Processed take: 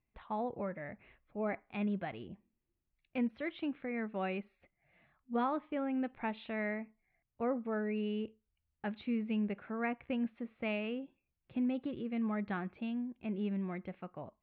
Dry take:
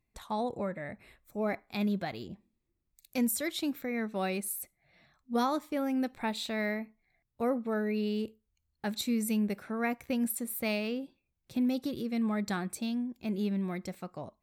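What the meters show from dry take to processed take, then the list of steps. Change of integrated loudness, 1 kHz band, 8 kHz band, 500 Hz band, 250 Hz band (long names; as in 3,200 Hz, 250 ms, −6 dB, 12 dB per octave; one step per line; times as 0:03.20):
−4.5 dB, −3.5 dB, below −40 dB, −4.0 dB, −4.5 dB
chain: elliptic low-pass filter 3,000 Hz, stop band 60 dB
level −3.5 dB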